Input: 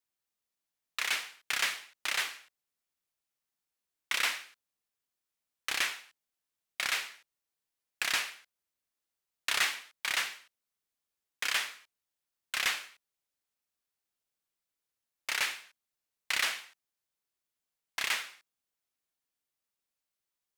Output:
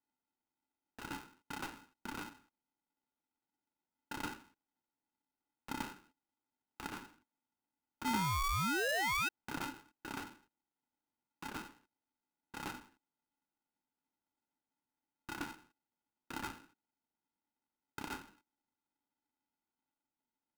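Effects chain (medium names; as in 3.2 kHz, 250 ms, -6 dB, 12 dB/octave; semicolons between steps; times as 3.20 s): cascade formant filter u; painted sound rise, 8.05–9.29 s, 300–2100 Hz -51 dBFS; polarity switched at an audio rate 570 Hz; trim +17 dB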